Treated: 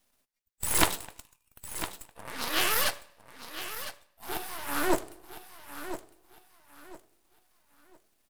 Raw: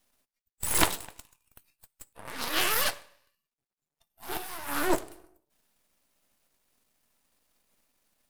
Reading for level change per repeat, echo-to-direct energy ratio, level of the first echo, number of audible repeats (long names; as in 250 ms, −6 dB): −11.0 dB, −11.0 dB, −11.5 dB, 3